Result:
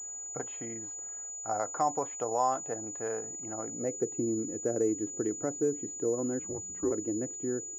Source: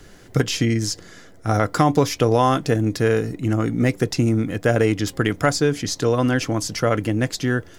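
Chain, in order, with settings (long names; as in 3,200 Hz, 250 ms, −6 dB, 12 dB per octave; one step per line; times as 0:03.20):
0:06.39–0:06.92: frequency shifter −200 Hz
band-pass filter sweep 780 Hz → 370 Hz, 0:03.55–0:04.12
switching amplifier with a slow clock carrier 6,900 Hz
level −6.5 dB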